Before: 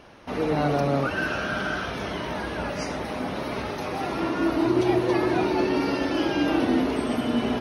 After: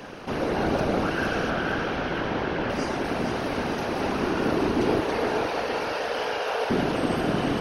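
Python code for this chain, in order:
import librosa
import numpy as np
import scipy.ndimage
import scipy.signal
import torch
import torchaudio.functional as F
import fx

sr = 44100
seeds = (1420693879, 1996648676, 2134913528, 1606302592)

p1 = fx.bin_compress(x, sr, power=0.6)
p2 = fx.lowpass(p1, sr, hz=4000.0, slope=12, at=(1.5, 2.7))
p3 = fx.whisperise(p2, sr, seeds[0])
p4 = fx.brickwall_highpass(p3, sr, low_hz=410.0, at=(5.0, 6.7))
p5 = p4 + fx.echo_feedback(p4, sr, ms=461, feedback_pct=53, wet_db=-7.5, dry=0)
y = p5 * 10.0 ** (-4.5 / 20.0)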